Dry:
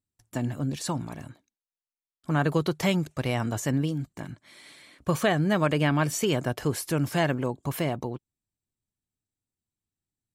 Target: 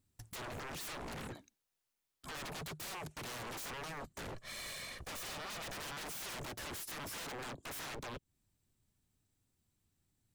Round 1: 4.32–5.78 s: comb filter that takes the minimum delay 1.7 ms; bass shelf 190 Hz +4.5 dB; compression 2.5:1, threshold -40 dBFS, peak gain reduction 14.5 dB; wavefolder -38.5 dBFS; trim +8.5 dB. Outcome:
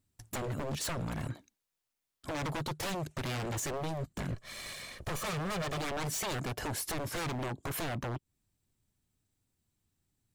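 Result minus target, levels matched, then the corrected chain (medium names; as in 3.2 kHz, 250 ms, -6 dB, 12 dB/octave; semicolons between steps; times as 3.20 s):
wavefolder: distortion -19 dB
4.32–5.78 s: comb filter that takes the minimum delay 1.7 ms; bass shelf 190 Hz +4.5 dB; compression 2.5:1, threshold -40 dBFS, peak gain reduction 14.5 dB; wavefolder -48 dBFS; trim +8.5 dB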